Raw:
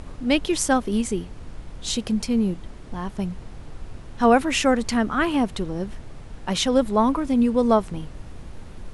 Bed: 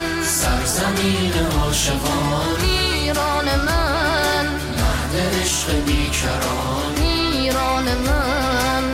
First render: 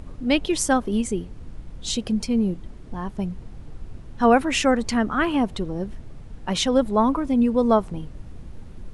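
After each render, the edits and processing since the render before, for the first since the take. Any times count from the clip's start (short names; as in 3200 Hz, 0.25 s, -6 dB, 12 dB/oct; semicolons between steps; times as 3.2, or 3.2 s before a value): denoiser 7 dB, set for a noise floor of -40 dBFS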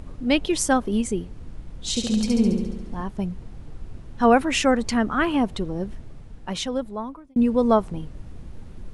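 1.89–3.03 flutter echo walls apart 12 m, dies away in 1.1 s; 5.94–7.36 fade out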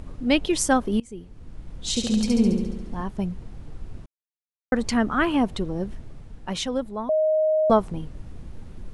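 1–1.73 fade in, from -24 dB; 4.06–4.72 mute; 7.09–7.7 bleep 624 Hz -17.5 dBFS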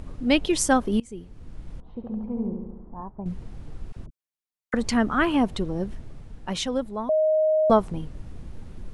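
1.8–3.26 ladder low-pass 1100 Hz, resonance 50%; 3.92–4.74 dispersion lows, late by 46 ms, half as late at 590 Hz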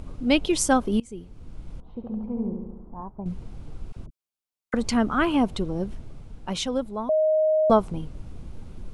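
bell 1800 Hz -8 dB 0.2 oct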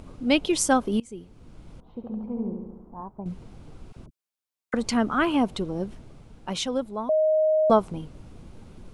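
low shelf 91 Hz -10.5 dB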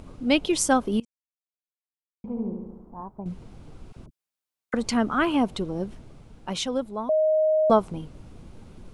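1.05–2.24 mute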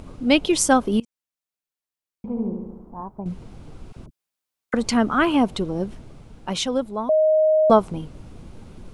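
gain +4 dB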